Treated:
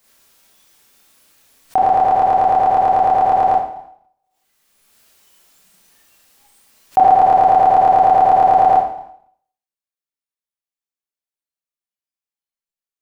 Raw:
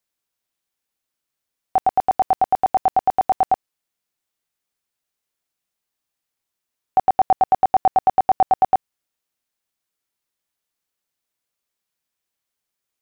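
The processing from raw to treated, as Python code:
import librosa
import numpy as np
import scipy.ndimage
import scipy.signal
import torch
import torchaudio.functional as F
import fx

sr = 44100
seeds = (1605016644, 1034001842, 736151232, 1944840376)

p1 = fx.noise_reduce_blind(x, sr, reduce_db=20)
p2 = p1 + 10.0 ** (-21.5 / 20.0) * np.pad(p1, (int(218 * sr / 1000.0), 0))[:len(p1)]
p3 = fx.level_steps(p2, sr, step_db=13)
p4 = p2 + (p3 * 10.0 ** (1.0 / 20.0))
p5 = fx.rev_schroeder(p4, sr, rt60_s=0.59, comb_ms=28, drr_db=-6.5)
p6 = fx.pre_swell(p5, sr, db_per_s=23.0)
y = p6 * 10.0 ** (-5.5 / 20.0)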